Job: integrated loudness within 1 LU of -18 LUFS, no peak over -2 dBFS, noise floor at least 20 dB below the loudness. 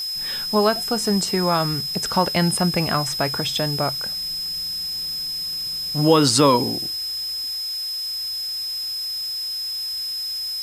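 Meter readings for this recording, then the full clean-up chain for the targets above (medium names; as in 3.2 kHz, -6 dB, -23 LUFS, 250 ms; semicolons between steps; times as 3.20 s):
steady tone 5.1 kHz; tone level -25 dBFS; noise floor -28 dBFS; noise floor target -42 dBFS; loudness -21.5 LUFS; peak level -2.5 dBFS; loudness target -18.0 LUFS
-> band-stop 5.1 kHz, Q 30; noise reduction 14 dB, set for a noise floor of -28 dBFS; trim +3.5 dB; peak limiter -2 dBFS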